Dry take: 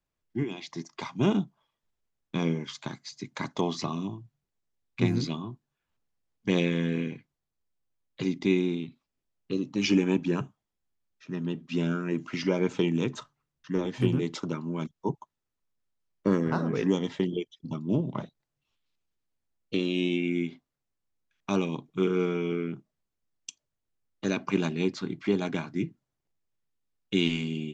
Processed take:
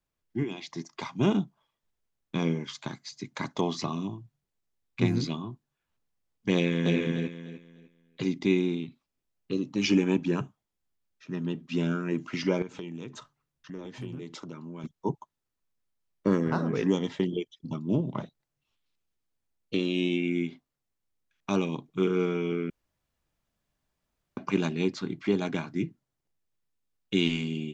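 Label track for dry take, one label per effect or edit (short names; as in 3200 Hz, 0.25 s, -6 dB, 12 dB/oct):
6.550000	6.970000	echo throw 0.3 s, feedback 25%, level -2 dB
12.620000	14.840000	compressor 2.5:1, threshold -41 dBFS
22.700000	24.370000	room tone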